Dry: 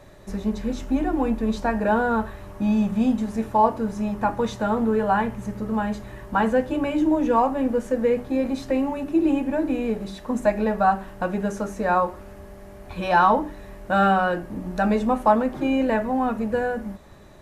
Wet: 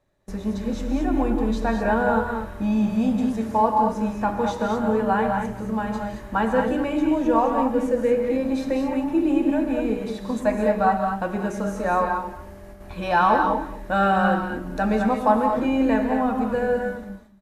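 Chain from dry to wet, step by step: gate with hold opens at -32 dBFS; on a send: delay 226 ms -17.5 dB; on the sum: gated-style reverb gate 250 ms rising, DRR 3 dB; trim -1.5 dB

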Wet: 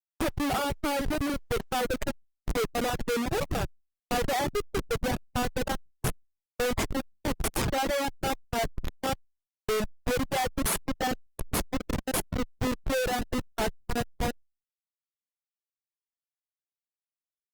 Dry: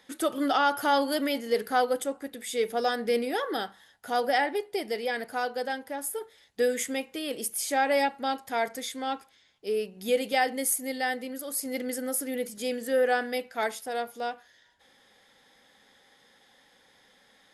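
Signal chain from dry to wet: Schmitt trigger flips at -26.5 dBFS; reverb removal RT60 1.5 s; trim +4.5 dB; Opus 32 kbps 48 kHz

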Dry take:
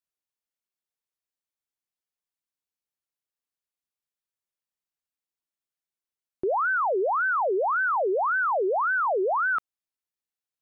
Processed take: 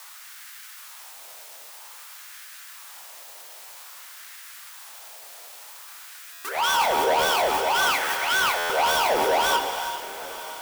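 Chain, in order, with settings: peaking EQ 160 Hz +6 dB 1.9 oct; de-hum 78.52 Hz, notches 12; waveshaping leveller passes 2; in parallel at -9 dB: word length cut 6-bit, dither triangular; on the sum: formant shift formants -5 st; LFO high-pass sine 0.52 Hz 590–1600 Hz; saturation -19.5 dBFS, distortion -7 dB; echo that smears into a reverb 919 ms, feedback 58%, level -16 dB; gated-style reverb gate 460 ms flat, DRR 5 dB; buffer glitch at 6.32/8.57 s, samples 512, times 10

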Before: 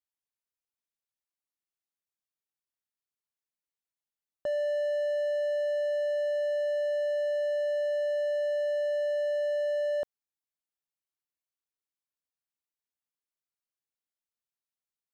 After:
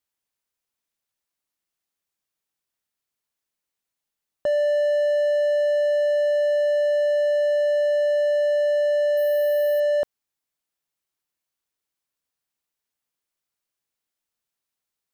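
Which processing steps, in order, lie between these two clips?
9.17–9.80 s: careless resampling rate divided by 3×, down filtered, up hold; trim +8.5 dB

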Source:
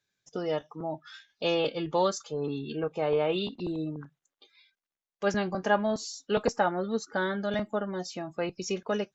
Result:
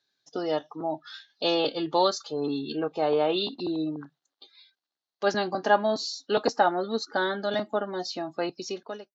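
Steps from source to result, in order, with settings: fade out at the end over 0.70 s; cabinet simulation 190–6000 Hz, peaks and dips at 190 Hz -6 dB, 290 Hz +4 dB, 500 Hz -3 dB, 750 Hz +4 dB, 2.3 kHz -7 dB, 4.2 kHz +10 dB; trim +3 dB

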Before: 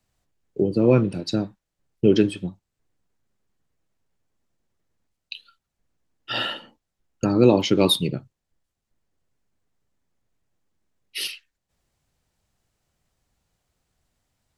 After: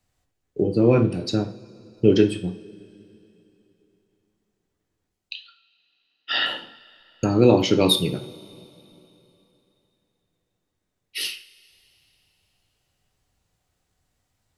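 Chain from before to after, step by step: 5.34–6.46 s: cabinet simulation 360–5300 Hz, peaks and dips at 360 Hz -4 dB, 530 Hz -7 dB, 910 Hz -4 dB, 1.9 kHz +7 dB, 3.4 kHz +4 dB, 4.9 kHz +5 dB; two-slope reverb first 0.38 s, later 3.3 s, from -22 dB, DRR 5.5 dB

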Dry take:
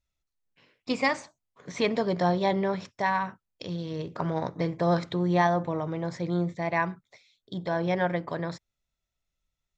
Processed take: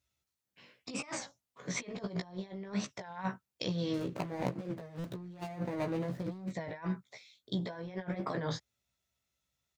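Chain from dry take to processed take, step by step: 3.93–6.52 s: median filter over 41 samples; high-pass 68 Hz 24 dB/octave; treble shelf 3.8 kHz +3.5 dB; compressor with a negative ratio -33 dBFS, ratio -0.5; doubling 16 ms -4 dB; buffer glitch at 4.99 s, samples 256, times 8; warped record 33 1/3 rpm, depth 160 cents; trim -5 dB

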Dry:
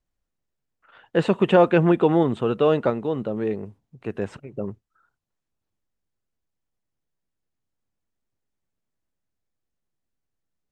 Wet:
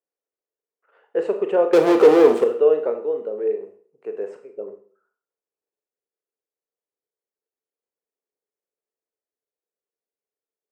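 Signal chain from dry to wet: peaking EQ 3.6 kHz -11 dB 0.49 oct; 1.73–2.44 s: waveshaping leveller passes 5; resonant high-pass 440 Hz, resonance Q 4.9; Schroeder reverb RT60 0.48 s, combs from 26 ms, DRR 6 dB; trim -10 dB

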